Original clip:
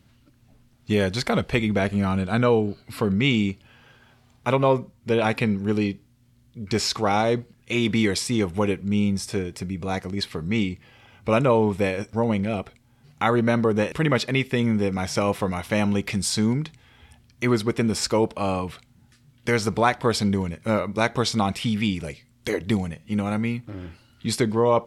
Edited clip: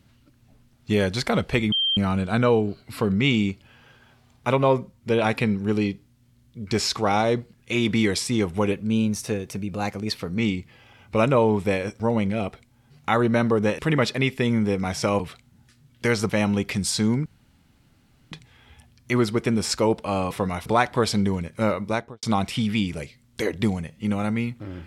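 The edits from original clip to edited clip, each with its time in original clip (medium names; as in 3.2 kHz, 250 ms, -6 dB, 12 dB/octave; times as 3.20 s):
1.72–1.97 s: bleep 3.16 kHz -19.5 dBFS
8.72–10.52 s: speed 108%
15.33–15.68 s: swap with 18.63–19.73 s
16.64 s: insert room tone 1.06 s
20.88–21.30 s: studio fade out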